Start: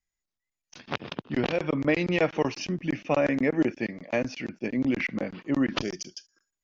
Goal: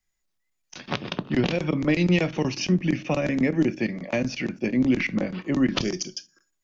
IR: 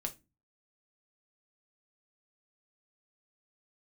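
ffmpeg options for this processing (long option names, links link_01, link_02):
-filter_complex "[0:a]acrossover=split=280|3000[link_01][link_02][link_03];[link_02]acompressor=threshold=-35dB:ratio=4[link_04];[link_01][link_04][link_03]amix=inputs=3:normalize=0,asplit=2[link_05][link_06];[1:a]atrim=start_sample=2205[link_07];[link_06][link_07]afir=irnorm=-1:irlink=0,volume=-5dB[link_08];[link_05][link_08]amix=inputs=2:normalize=0,volume=3.5dB"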